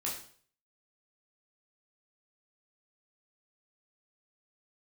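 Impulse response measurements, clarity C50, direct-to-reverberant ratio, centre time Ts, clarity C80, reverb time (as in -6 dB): 5.5 dB, -4.5 dB, 34 ms, 9.5 dB, 0.50 s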